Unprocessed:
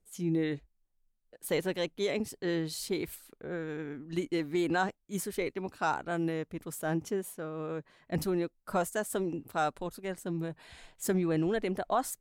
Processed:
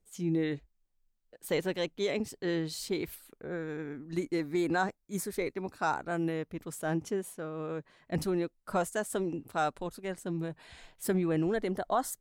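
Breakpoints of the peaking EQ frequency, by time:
peaking EQ -12.5 dB 0.2 oct
3.03 s 11 kHz
3.46 s 3 kHz
6.07 s 3 kHz
6.78 s 14 kHz
10.62 s 14 kHz
11.65 s 2.5 kHz

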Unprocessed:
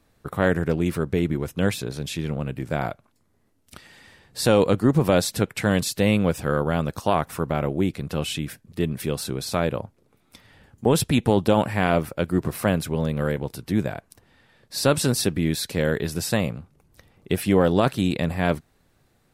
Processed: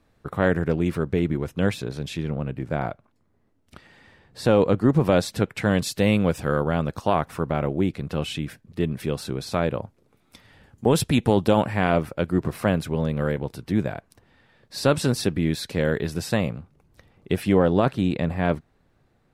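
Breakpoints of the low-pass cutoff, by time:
low-pass 6 dB/octave
3.6 kHz
from 2.23 s 1.9 kHz
from 4.81 s 3.4 kHz
from 5.84 s 6.9 kHz
from 6.65 s 3.6 kHz
from 9.82 s 9.3 kHz
from 11.60 s 3.9 kHz
from 17.58 s 2 kHz

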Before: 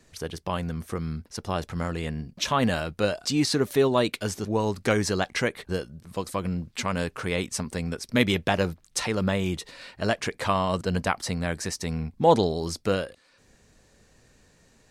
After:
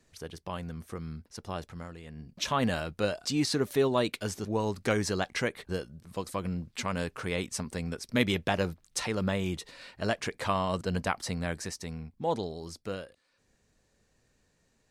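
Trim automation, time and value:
1.58 s -8 dB
2.04 s -16.5 dB
2.36 s -4.5 dB
11.51 s -4.5 dB
12.12 s -11.5 dB

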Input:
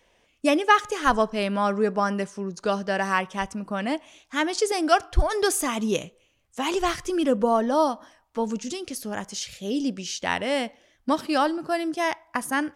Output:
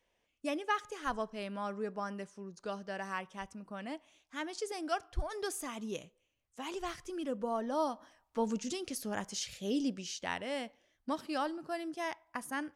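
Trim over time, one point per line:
7.39 s -15 dB
8.44 s -6 dB
9.72 s -6 dB
10.43 s -12.5 dB

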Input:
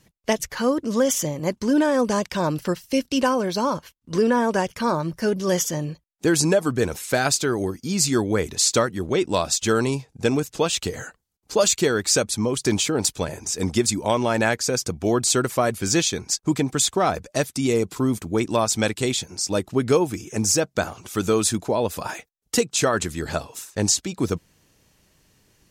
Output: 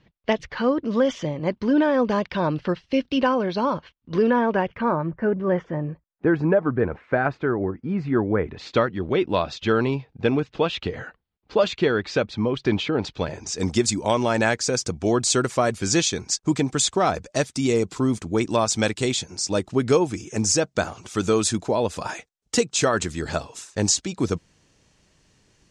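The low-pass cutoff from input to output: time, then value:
low-pass 24 dB/octave
4.25 s 3.8 kHz
5.16 s 1.9 kHz
8.39 s 1.9 kHz
8.80 s 3.5 kHz
13.03 s 3.5 kHz
13.70 s 8.2 kHz

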